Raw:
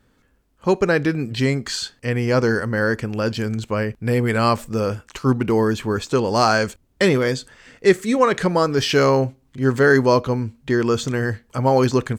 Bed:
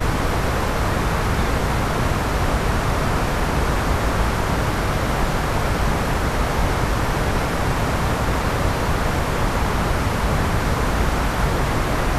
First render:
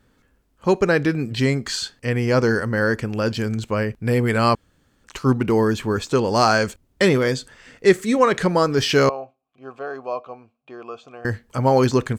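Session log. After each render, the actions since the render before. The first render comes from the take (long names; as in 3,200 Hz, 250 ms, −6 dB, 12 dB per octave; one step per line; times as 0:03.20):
0:04.55–0:05.04: fill with room tone
0:09.09–0:11.25: formant filter a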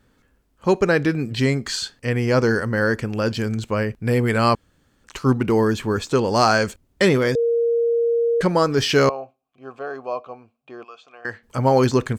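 0:07.35–0:08.41: beep over 467 Hz −16 dBFS
0:10.83–0:11.42: resonant band-pass 4,100 Hz → 1,300 Hz, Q 0.53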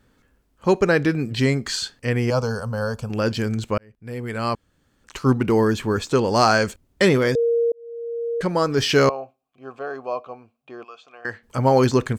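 0:02.30–0:03.10: phaser with its sweep stopped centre 800 Hz, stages 4
0:03.78–0:05.27: fade in
0:07.72–0:08.90: fade in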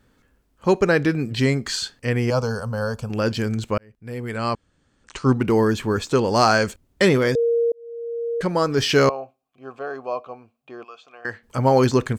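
0:04.36–0:05.37: linear-phase brick-wall low-pass 9,400 Hz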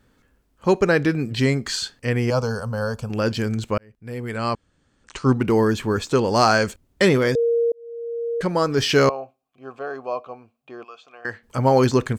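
no processing that can be heard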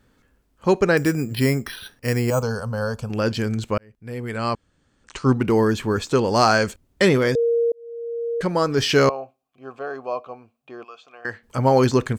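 0:00.97–0:02.43: bad sample-rate conversion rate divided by 6×, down filtered, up hold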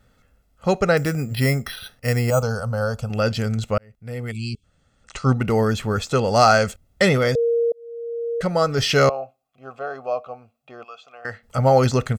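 0:04.31–0:04.64: time-frequency box erased 420–2,200 Hz
comb filter 1.5 ms, depth 60%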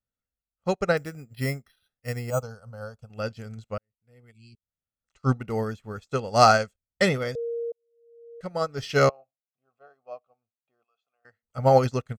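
expander for the loud parts 2.5 to 1, over −35 dBFS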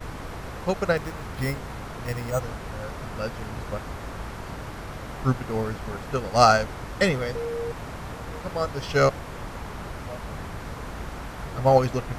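mix in bed −15.5 dB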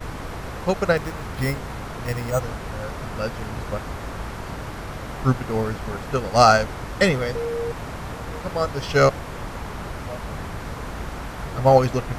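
level +3.5 dB
brickwall limiter −2 dBFS, peak gain reduction 2.5 dB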